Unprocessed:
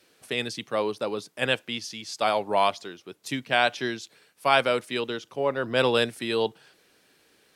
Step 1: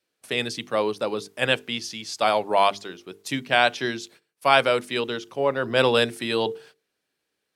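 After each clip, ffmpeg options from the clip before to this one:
-af "agate=range=-20dB:threshold=-52dB:ratio=16:detection=peak,bandreject=f=50:t=h:w=6,bandreject=f=100:t=h:w=6,bandreject=f=150:t=h:w=6,bandreject=f=200:t=h:w=6,bandreject=f=250:t=h:w=6,bandreject=f=300:t=h:w=6,bandreject=f=350:t=h:w=6,bandreject=f=400:t=h:w=6,bandreject=f=450:t=h:w=6,volume=3dB"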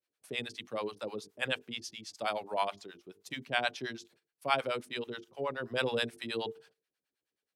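-filter_complex "[0:a]acrossover=split=610[a][b];[a]aeval=exprs='val(0)*(1-1/2+1/2*cos(2*PI*9.4*n/s))':c=same[c];[b]aeval=exprs='val(0)*(1-1/2-1/2*cos(2*PI*9.4*n/s))':c=same[d];[c][d]amix=inputs=2:normalize=0,volume=-7.5dB"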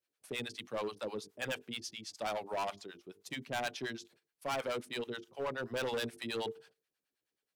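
-af "volume=32dB,asoftclip=hard,volume=-32dB"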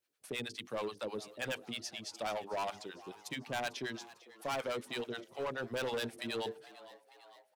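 -filter_complex "[0:a]asplit=2[a][b];[b]acompressor=threshold=-45dB:ratio=6,volume=0dB[c];[a][c]amix=inputs=2:normalize=0,asplit=6[d][e][f][g][h][i];[e]adelay=449,afreqshift=100,volume=-18.5dB[j];[f]adelay=898,afreqshift=200,volume=-22.9dB[k];[g]adelay=1347,afreqshift=300,volume=-27.4dB[l];[h]adelay=1796,afreqshift=400,volume=-31.8dB[m];[i]adelay=2245,afreqshift=500,volume=-36.2dB[n];[d][j][k][l][m][n]amix=inputs=6:normalize=0,volume=-3dB"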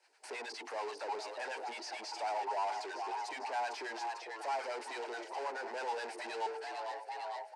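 -filter_complex "[0:a]asplit=2[a][b];[b]highpass=f=720:p=1,volume=32dB,asoftclip=type=tanh:threshold=-29.5dB[c];[a][c]amix=inputs=2:normalize=0,lowpass=f=1.4k:p=1,volume=-6dB,highpass=f=420:w=0.5412,highpass=f=420:w=1.3066,equalizer=f=530:t=q:w=4:g=-7,equalizer=f=880:t=q:w=4:g=9,equalizer=f=1.2k:t=q:w=4:g=-9,equalizer=f=3.4k:t=q:w=4:g=-9,equalizer=f=4.8k:t=q:w=4:g=6,equalizer=f=8.5k:t=q:w=4:g=4,lowpass=f=9.4k:w=0.5412,lowpass=f=9.4k:w=1.3066,volume=-1dB"

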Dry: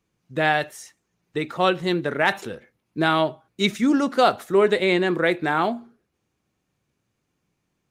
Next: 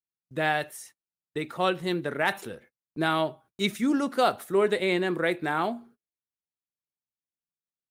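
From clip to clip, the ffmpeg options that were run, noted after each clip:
-af "agate=range=-29dB:threshold=-47dB:ratio=16:detection=peak,aexciter=amount=3.2:drive=2.9:freq=8.8k,volume=-5.5dB"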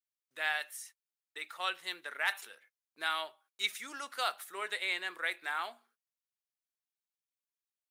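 -af "highpass=1.4k,volume=-2.5dB"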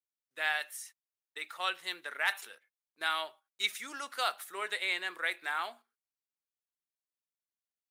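-af "agate=range=-9dB:threshold=-54dB:ratio=16:detection=peak,volume=1.5dB"

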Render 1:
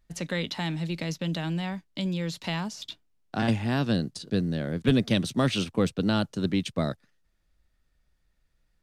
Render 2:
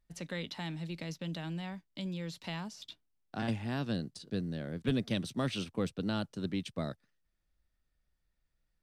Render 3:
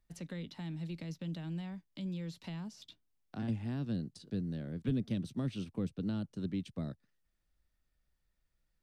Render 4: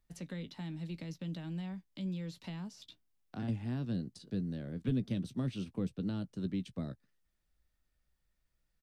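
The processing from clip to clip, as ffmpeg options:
-af "bandreject=f=6.7k:w=21,volume=-9dB"
-filter_complex "[0:a]acrossover=split=350[a][b];[b]acompressor=threshold=-54dB:ratio=2.5[c];[a][c]amix=inputs=2:normalize=0"
-filter_complex "[0:a]asplit=2[a][b];[b]adelay=16,volume=-13dB[c];[a][c]amix=inputs=2:normalize=0"

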